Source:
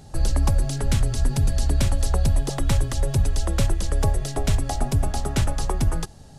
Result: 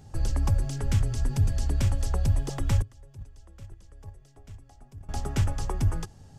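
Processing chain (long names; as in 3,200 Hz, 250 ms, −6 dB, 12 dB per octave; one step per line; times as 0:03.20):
0:02.82–0:05.09: noise gate −14 dBFS, range −22 dB
thirty-one-band graphic EQ 100 Hz +9 dB, 630 Hz −4 dB, 4,000 Hz −6 dB, 10,000 Hz −8 dB
level −6 dB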